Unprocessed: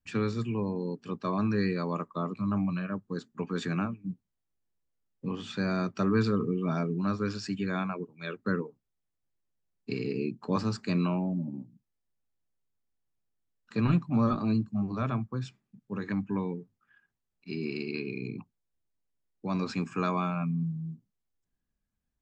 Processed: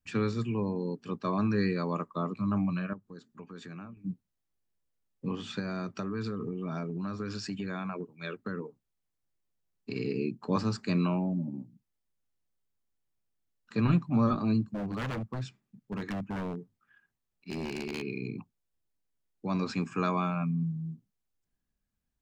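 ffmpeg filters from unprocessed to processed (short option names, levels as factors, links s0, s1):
-filter_complex "[0:a]asettb=1/sr,asplit=3[s0][s1][s2];[s0]atrim=end=2.934[s3];[s1]atrim=start=2.93:end=3.97,asetpts=PTS-STARTPTS,afade=t=in:d=0.004:c=qsin,afade=t=out:st=1.036:d=0.004:c=qsin,acompressor=threshold=0.00251:ratio=2:attack=3.2:release=140:knee=1:detection=peak[s4];[s2]atrim=start=3.966[s5];[s3][s4]acrossfade=d=0.004:c1=hsin:c2=qsin[s6];[s6][s5]acrossfade=d=0.004:c1=qsin:c2=hsin,asettb=1/sr,asplit=3[s7][s8][s9];[s7]atrim=end=5.594[s10];[s8]atrim=start=5.59:end=9.96,asetpts=PTS-STARTPTS,afade=t=in:d=0.004:c=qsin,afade=t=out:st=4.366:d=0.004:c=qsin,acompressor=threshold=0.0282:ratio=6:attack=3.2:release=140:knee=1:detection=peak[s11];[s9]atrim=start=9.956[s12];[s10][s11]acrossfade=d=0.004:c1=hsin:c2=qsin[s13];[s13][s12]acrossfade=d=0.004:c1=qsin:c2=hsin,asplit=3[s14][s15][s16];[s14]afade=t=out:st=14.67:d=0.02[s17];[s15]aeval=exprs='0.0355*(abs(mod(val(0)/0.0355+3,4)-2)-1)':c=same,afade=t=in:st=14.67:d=0.02,afade=t=out:st=18.01:d=0.02[s18];[s16]afade=t=in:st=18.01:d=0.02[s19];[s17][s18][s19]amix=inputs=3:normalize=0"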